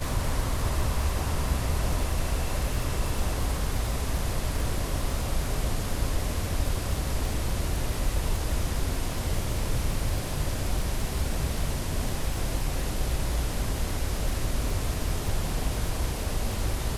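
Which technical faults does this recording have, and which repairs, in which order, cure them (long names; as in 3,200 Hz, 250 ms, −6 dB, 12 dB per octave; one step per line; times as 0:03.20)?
surface crackle 34 per second −30 dBFS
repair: click removal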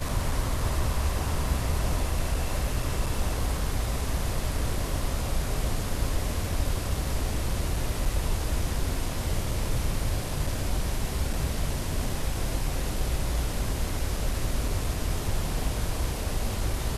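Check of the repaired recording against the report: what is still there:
none of them is left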